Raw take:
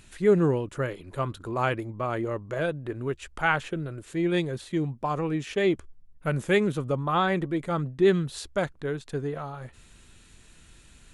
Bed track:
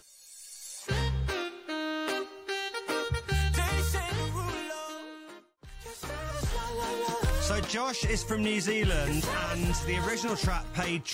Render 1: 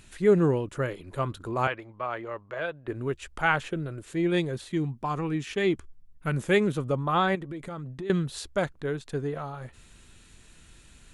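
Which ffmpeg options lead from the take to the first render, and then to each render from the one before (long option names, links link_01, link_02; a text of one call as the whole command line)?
ffmpeg -i in.wav -filter_complex "[0:a]asettb=1/sr,asplit=3[link_01][link_02][link_03];[link_01]atrim=end=1.674[link_04];[link_02]atrim=start=1.67:end=2.88,asetpts=PTS-STARTPTS,afade=type=in:duration=0.004:curve=qsin,afade=type=out:start_time=1.206:duration=0.004:curve=qsin,acrossover=split=560 4400:gain=0.224 1 0.1[link_05][link_06][link_07];[link_05][link_06][link_07]amix=inputs=3:normalize=0[link_08];[link_03]atrim=start=2.876[link_09];[link_04][link_08]acrossfade=duration=0.004:curve1=hsin:curve2=qsin[link_10];[link_10][link_09]acrossfade=duration=0.004:curve1=qsin:curve2=hsin,asettb=1/sr,asplit=3[link_11][link_12][link_13];[link_11]atrim=end=4.724[link_14];[link_12]atrim=start=4.72:end=6.37,asetpts=PTS-STARTPTS,afade=type=in:duration=0.004:curve=qsin,afade=type=out:start_time=1.646:duration=0.004:curve=qsin,equalizer=frequency=560:width=2.5:gain=-8[link_15];[link_13]atrim=start=6.366[link_16];[link_14][link_15]acrossfade=duration=0.004:curve1=hsin:curve2=qsin[link_17];[link_17][link_16]acrossfade=duration=0.004:curve1=qsin:curve2=hsin,asettb=1/sr,asplit=3[link_18][link_19][link_20];[link_18]atrim=end=7.354[link_21];[link_19]atrim=start=7.35:end=8.1,asetpts=PTS-STARTPTS,afade=type=in:duration=0.004:curve=qsin,afade=type=out:start_time=0.746:duration=0.004:curve=qsin,acompressor=threshold=-33dB:ratio=10:attack=3.2:release=140:knee=1:detection=peak[link_22];[link_20]atrim=start=8.096[link_23];[link_21][link_22]acrossfade=duration=0.004:curve1=hsin:curve2=qsin[link_24];[link_24][link_23]acrossfade=duration=0.004:curve1=qsin:curve2=hsin" out.wav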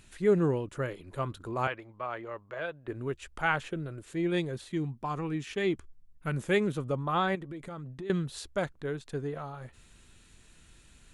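ffmpeg -i in.wav -af "volume=-4dB" out.wav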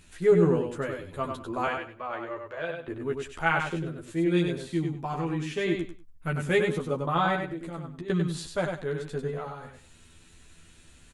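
ffmpeg -i in.wav -filter_complex "[0:a]asplit=2[link_01][link_02];[link_02]adelay=12,volume=-2.5dB[link_03];[link_01][link_03]amix=inputs=2:normalize=0,asplit=2[link_04][link_05];[link_05]aecho=0:1:97|194|291:0.562|0.118|0.0248[link_06];[link_04][link_06]amix=inputs=2:normalize=0" out.wav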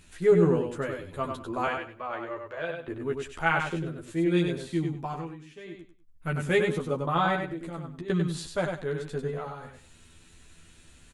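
ffmpeg -i in.wav -filter_complex "[0:a]asplit=3[link_01][link_02][link_03];[link_01]atrim=end=5.37,asetpts=PTS-STARTPTS,afade=type=out:start_time=5.02:duration=0.35:silence=0.16788[link_04];[link_02]atrim=start=5.37:end=5.97,asetpts=PTS-STARTPTS,volume=-15.5dB[link_05];[link_03]atrim=start=5.97,asetpts=PTS-STARTPTS,afade=type=in:duration=0.35:silence=0.16788[link_06];[link_04][link_05][link_06]concat=n=3:v=0:a=1" out.wav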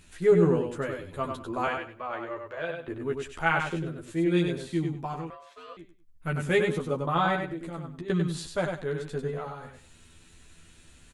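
ffmpeg -i in.wav -filter_complex "[0:a]asettb=1/sr,asplit=3[link_01][link_02][link_03];[link_01]atrim=end=5.304[link_04];[link_02]atrim=start=5.3:end=5.77,asetpts=PTS-STARTPTS,afade=type=in:duration=0.004:curve=qsin,afade=type=out:start_time=0.466:duration=0.004:curve=qsin,aeval=exprs='val(0)*sin(2*PI*850*n/s)':channel_layout=same[link_05];[link_03]atrim=start=5.766[link_06];[link_04][link_05]acrossfade=duration=0.004:curve1=hsin:curve2=qsin[link_07];[link_07][link_06]acrossfade=duration=0.004:curve1=qsin:curve2=hsin" out.wav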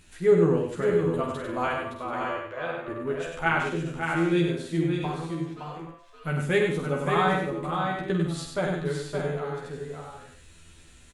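ffmpeg -i in.wav -filter_complex "[0:a]asplit=2[link_01][link_02];[link_02]adelay=48,volume=-7dB[link_03];[link_01][link_03]amix=inputs=2:normalize=0,aecho=1:1:566|639:0.501|0.335" out.wav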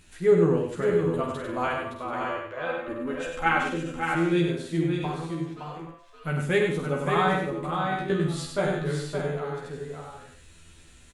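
ffmpeg -i in.wav -filter_complex "[0:a]asettb=1/sr,asplit=3[link_01][link_02][link_03];[link_01]atrim=end=2.664[link_04];[link_02]atrim=start=2.66:end=4.15,asetpts=PTS-STARTPTS,afade=type=in:duration=0.004:curve=qsin,afade=type=out:start_time=1.486:duration=0.004:curve=qsin,aecho=1:1:3.8:0.65,atrim=end_sample=65709[link_05];[link_03]atrim=start=4.146[link_06];[link_04][link_05]acrossfade=duration=0.004:curve1=hsin:curve2=qsin[link_07];[link_07][link_06]acrossfade=duration=0.004:curve1=qsin:curve2=hsin,asettb=1/sr,asplit=3[link_08][link_09][link_10];[link_08]atrim=end=7.904[link_11];[link_09]atrim=start=7.9:end=9.14,asetpts=PTS-STARTPTS,afade=type=in:duration=0.004:curve=qsin,afade=type=out:start_time=1.236:duration=0.004:curve=qsin,asplit=2[link_12][link_13];[link_13]adelay=20,volume=-3dB[link_14];[link_12][link_14]amix=inputs=2:normalize=0,atrim=end_sample=54684[link_15];[link_10]atrim=start=9.136[link_16];[link_11][link_15]acrossfade=duration=0.004:curve1=hsin:curve2=qsin[link_17];[link_17][link_16]acrossfade=duration=0.004:curve1=qsin:curve2=hsin" out.wav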